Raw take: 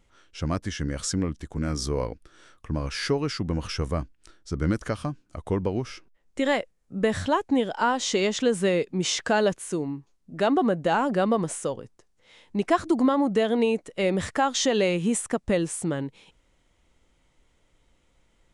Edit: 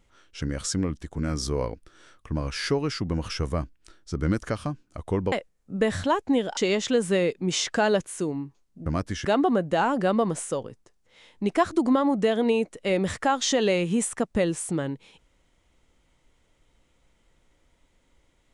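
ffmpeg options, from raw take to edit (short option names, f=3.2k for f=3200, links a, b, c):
-filter_complex "[0:a]asplit=6[a][b][c][d][e][f];[a]atrim=end=0.422[g];[b]atrim=start=0.808:end=5.712[h];[c]atrim=start=6.538:end=7.792[i];[d]atrim=start=8.088:end=10.382[j];[e]atrim=start=0.418:end=0.812[k];[f]atrim=start=10.378[l];[g][h]acrossfade=d=0.004:c1=hsin:c2=hsin[m];[m][i]acrossfade=d=0.004:c1=hsin:c2=hsin[n];[n][j]acrossfade=d=0.004:c1=hsin:c2=hsin[o];[o][k]acrossfade=d=0.004:c1=hsin:c2=hsin[p];[p][l]acrossfade=d=0.004:c1=hsin:c2=hsin"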